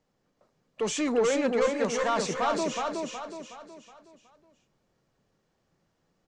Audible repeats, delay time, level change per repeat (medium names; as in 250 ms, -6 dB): 5, 369 ms, -7.5 dB